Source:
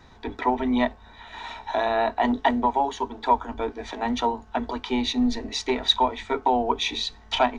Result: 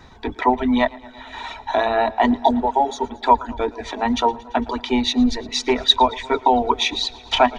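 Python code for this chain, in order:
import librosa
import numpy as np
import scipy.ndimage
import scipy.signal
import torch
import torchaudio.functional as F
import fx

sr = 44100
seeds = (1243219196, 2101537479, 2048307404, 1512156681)

y = fx.spec_repair(x, sr, seeds[0], start_s=2.39, length_s=0.67, low_hz=950.0, high_hz=3300.0, source='both')
y = fx.dereverb_blind(y, sr, rt60_s=0.81)
y = fx.echo_warbled(y, sr, ms=113, feedback_pct=75, rate_hz=2.8, cents=55, wet_db=-22)
y = F.gain(torch.from_numpy(y), 6.0).numpy()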